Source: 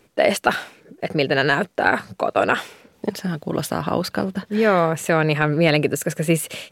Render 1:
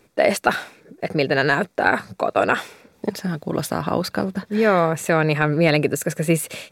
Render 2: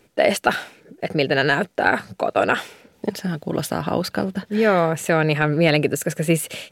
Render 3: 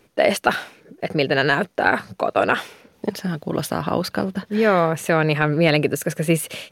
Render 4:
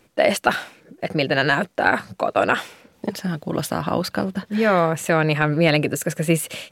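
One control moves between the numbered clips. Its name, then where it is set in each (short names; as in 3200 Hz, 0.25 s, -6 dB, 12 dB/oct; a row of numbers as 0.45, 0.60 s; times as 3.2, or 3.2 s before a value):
notch, frequency: 3000, 1100, 7600, 420 Hz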